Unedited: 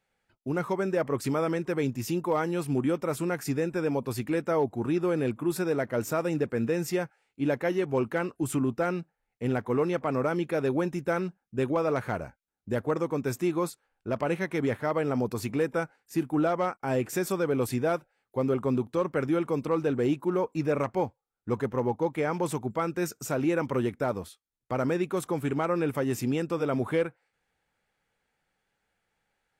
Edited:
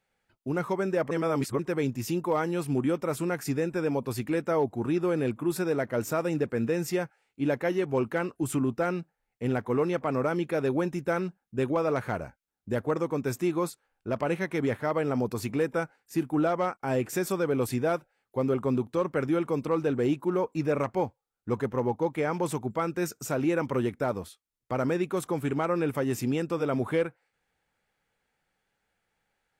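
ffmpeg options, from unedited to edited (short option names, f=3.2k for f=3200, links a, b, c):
-filter_complex "[0:a]asplit=3[a][b][c];[a]atrim=end=1.112[d];[b]atrim=start=1.108:end=1.592,asetpts=PTS-STARTPTS,areverse[e];[c]atrim=start=1.588[f];[d][e]acrossfade=d=0.004:c1=hsin:c2=hsin[g];[g][f]acrossfade=d=0.004:c1=hsin:c2=hsin"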